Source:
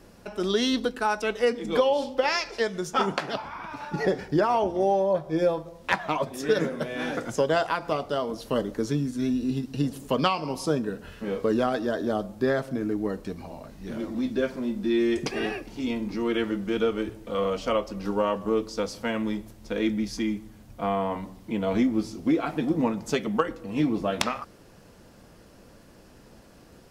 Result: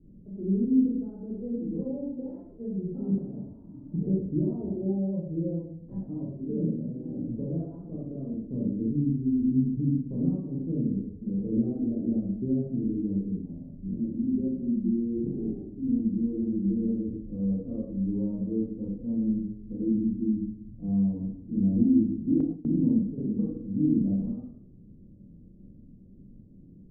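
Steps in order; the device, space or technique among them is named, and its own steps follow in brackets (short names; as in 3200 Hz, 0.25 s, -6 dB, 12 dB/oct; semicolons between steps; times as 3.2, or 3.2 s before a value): next room (LPF 290 Hz 24 dB/oct; reverb RT60 0.65 s, pre-delay 22 ms, DRR -7 dB); 22.4–23.18 gate with hold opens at -17 dBFS; gain -3 dB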